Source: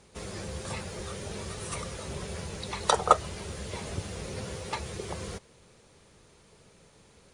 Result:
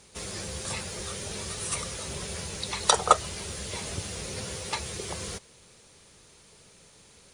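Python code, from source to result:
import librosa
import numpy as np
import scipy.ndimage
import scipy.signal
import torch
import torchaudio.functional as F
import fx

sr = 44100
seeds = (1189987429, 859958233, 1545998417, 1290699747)

y = fx.high_shelf(x, sr, hz=2400.0, db=10.0)
y = y * 10.0 ** (-1.0 / 20.0)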